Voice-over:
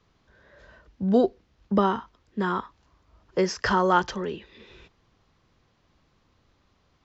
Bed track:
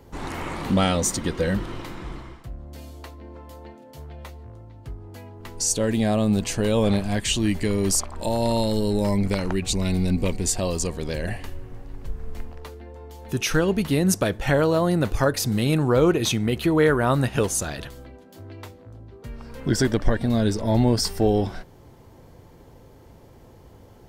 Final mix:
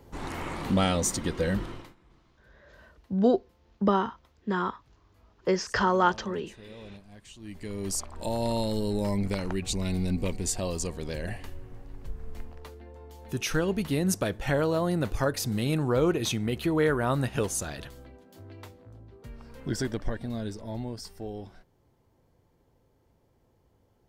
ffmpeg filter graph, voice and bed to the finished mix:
ffmpeg -i stem1.wav -i stem2.wav -filter_complex "[0:a]adelay=2100,volume=-2dB[link_01];[1:a]volume=16dB,afade=type=out:start_time=1.64:duration=0.31:silence=0.0794328,afade=type=in:start_time=7.38:duration=0.87:silence=0.1,afade=type=out:start_time=18.95:duration=2.02:silence=0.251189[link_02];[link_01][link_02]amix=inputs=2:normalize=0" out.wav

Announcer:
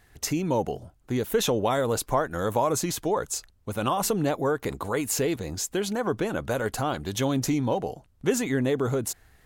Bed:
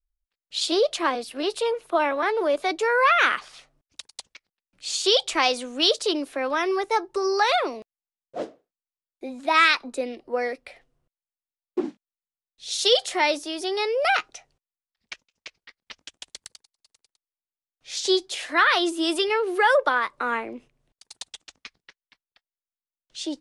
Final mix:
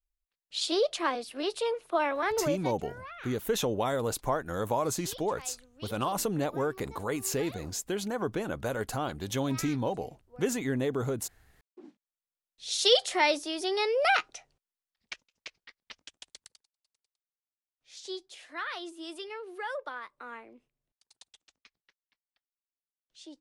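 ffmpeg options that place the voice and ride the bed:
ffmpeg -i stem1.wav -i stem2.wav -filter_complex "[0:a]adelay=2150,volume=-5dB[link_01];[1:a]volume=18dB,afade=type=out:start_time=2.41:duration=0.36:silence=0.0891251,afade=type=in:start_time=11.8:duration=0.64:silence=0.0668344,afade=type=out:start_time=15.5:duration=1.33:silence=0.188365[link_02];[link_01][link_02]amix=inputs=2:normalize=0" out.wav

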